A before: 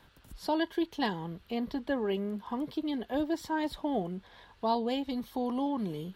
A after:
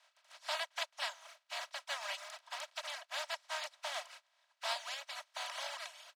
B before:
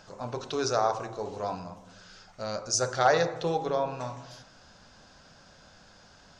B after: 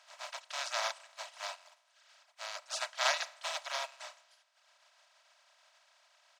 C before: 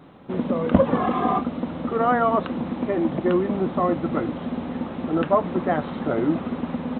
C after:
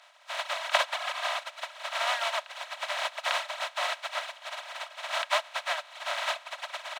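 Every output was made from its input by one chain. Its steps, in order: spectral contrast reduction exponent 0.19; steep high-pass 560 Hz 96 dB/octave; reverb removal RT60 1 s; distance through air 100 m; comb 3.1 ms, depth 46%; trim -5 dB

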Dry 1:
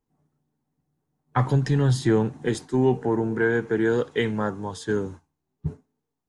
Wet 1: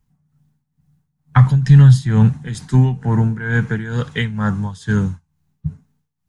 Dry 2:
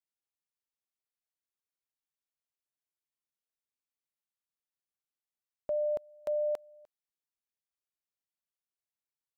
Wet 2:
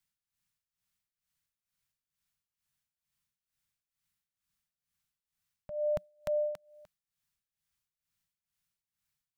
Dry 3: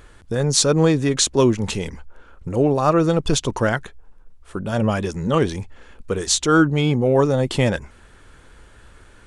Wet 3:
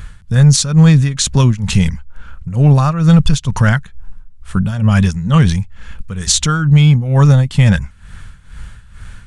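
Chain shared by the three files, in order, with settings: FFT filter 180 Hz 0 dB, 340 Hz -23 dB, 1.5 kHz -8 dB; tremolo 2.2 Hz, depth 79%; loudness maximiser +19.5 dB; trim -1 dB

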